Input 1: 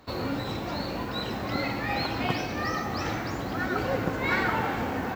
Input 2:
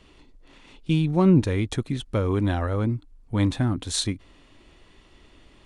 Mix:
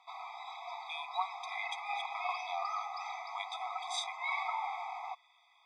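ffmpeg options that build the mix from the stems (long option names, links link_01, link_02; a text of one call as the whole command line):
ffmpeg -i stem1.wav -i stem2.wav -filter_complex "[0:a]bandreject=frequency=50:width_type=h:width=6,bandreject=frequency=100:width_type=h:width=6,bandreject=frequency=150:width_type=h:width=6,bandreject=frequency=200:width_type=h:width=6,volume=-5.5dB[link_01];[1:a]volume=-4dB[link_02];[link_01][link_02]amix=inputs=2:normalize=0,lowpass=4800,afftfilt=real='re*eq(mod(floor(b*sr/1024/650),2),1)':imag='im*eq(mod(floor(b*sr/1024/650),2),1)':win_size=1024:overlap=0.75" out.wav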